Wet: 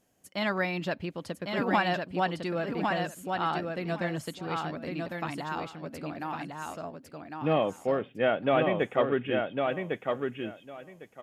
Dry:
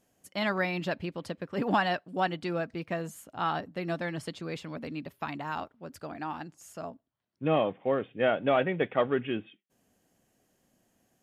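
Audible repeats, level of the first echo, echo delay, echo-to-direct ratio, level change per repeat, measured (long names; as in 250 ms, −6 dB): 3, −4.0 dB, 1,104 ms, −4.0 dB, −15.5 dB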